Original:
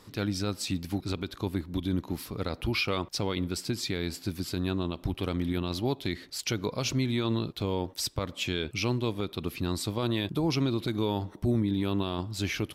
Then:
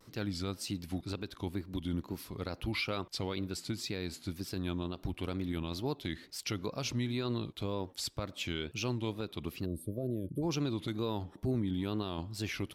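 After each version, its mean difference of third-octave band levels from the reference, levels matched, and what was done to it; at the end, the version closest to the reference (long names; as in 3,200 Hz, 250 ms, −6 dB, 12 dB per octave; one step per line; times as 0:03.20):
3.0 dB: gain on a spectral selection 0:09.65–0:10.42, 660–8,900 Hz −29 dB
tape wow and flutter 130 cents
level −6 dB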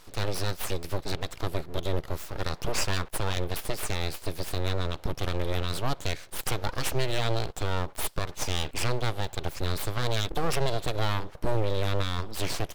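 8.5 dB: full-wave rectification
parametric band 230 Hz −8.5 dB 0.6 octaves
level +4.5 dB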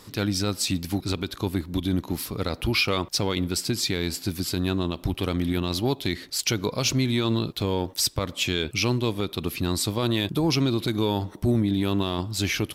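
1.5 dB: high-shelf EQ 4,200 Hz +6 dB
in parallel at −9 dB: hard clipping −23 dBFS, distortion −16 dB
on the sum: level +2 dB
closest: third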